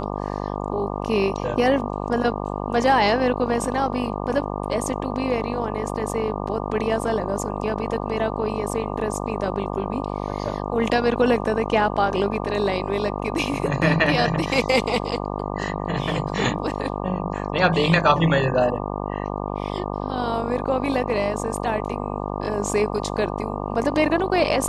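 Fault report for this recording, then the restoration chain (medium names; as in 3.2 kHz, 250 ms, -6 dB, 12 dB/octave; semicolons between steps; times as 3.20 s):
buzz 50 Hz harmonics 24 -28 dBFS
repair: de-hum 50 Hz, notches 24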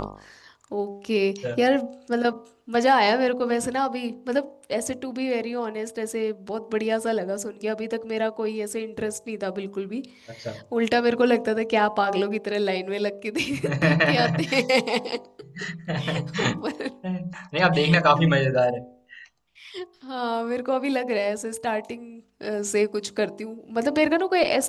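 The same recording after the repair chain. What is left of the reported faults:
nothing left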